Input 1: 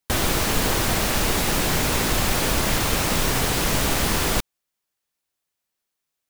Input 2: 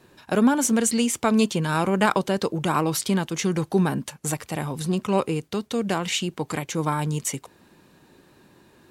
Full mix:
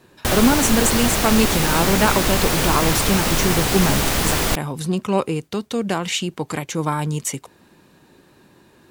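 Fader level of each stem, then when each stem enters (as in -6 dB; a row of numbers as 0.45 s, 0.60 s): +2.0 dB, +2.5 dB; 0.15 s, 0.00 s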